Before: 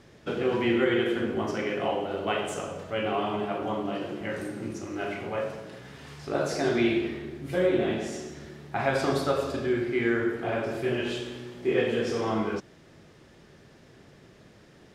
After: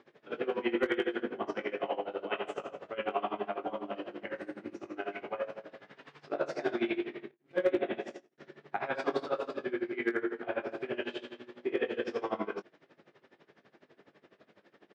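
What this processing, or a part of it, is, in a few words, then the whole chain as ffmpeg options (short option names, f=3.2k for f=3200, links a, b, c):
helicopter radio: -filter_complex "[0:a]asettb=1/sr,asplit=3[a][b][c];[a]atrim=end=7.314[d];[b]atrim=start=7.31:end=8.38,asetpts=PTS-STARTPTS,afade=t=in:d=0.004:c=qsin,afade=t=out:st=1.066:d=0.004:c=qsin,agate=range=-31dB:threshold=-34dB:ratio=16:detection=peak[e];[c]atrim=start=8.376[f];[d][e]acrossfade=d=0.004:c1=hsin:c2=qsin[g];[g][f]acrossfade=d=0.004:c1=qsin:c2=hsin,highpass=310,lowpass=3k,aeval=exprs='val(0)*pow(10,-21*(0.5-0.5*cos(2*PI*12*n/s))/20)':c=same,asoftclip=type=hard:threshold=-19dB,asplit=2[h][i];[i]adelay=20,volume=-11.5dB[j];[h][j]amix=inputs=2:normalize=0"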